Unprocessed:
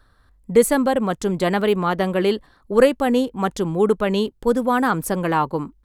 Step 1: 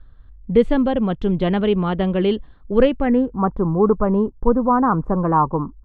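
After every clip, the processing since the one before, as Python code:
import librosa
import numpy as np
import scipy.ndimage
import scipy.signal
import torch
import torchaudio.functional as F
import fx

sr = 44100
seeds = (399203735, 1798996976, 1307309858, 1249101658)

y = fx.tilt_eq(x, sr, slope=-4.0)
y = fx.filter_sweep_lowpass(y, sr, from_hz=3200.0, to_hz=1100.0, start_s=2.87, end_s=3.43, q=3.9)
y = F.gain(torch.from_numpy(y), -5.5).numpy()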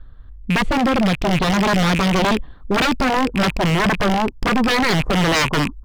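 y = fx.rattle_buzz(x, sr, strikes_db=-32.0, level_db=-18.0)
y = fx.rider(y, sr, range_db=10, speed_s=2.0)
y = 10.0 ** (-18.5 / 20.0) * (np.abs((y / 10.0 ** (-18.5 / 20.0) + 3.0) % 4.0 - 2.0) - 1.0)
y = F.gain(torch.from_numpy(y), 6.5).numpy()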